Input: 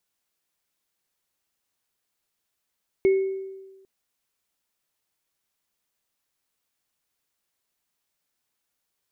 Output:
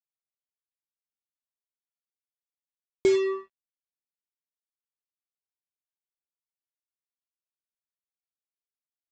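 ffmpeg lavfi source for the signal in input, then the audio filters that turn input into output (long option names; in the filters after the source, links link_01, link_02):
-f lavfi -i "aevalsrc='0.2*pow(10,-3*t/1.25)*sin(2*PI*385*t)+0.0266*pow(10,-3*t/0.65)*sin(2*PI*2190*t)':duration=0.8:sample_rate=44100"
-af "afwtdn=0.00708,aresample=16000,acrusher=bits=4:mix=0:aa=0.5,aresample=44100"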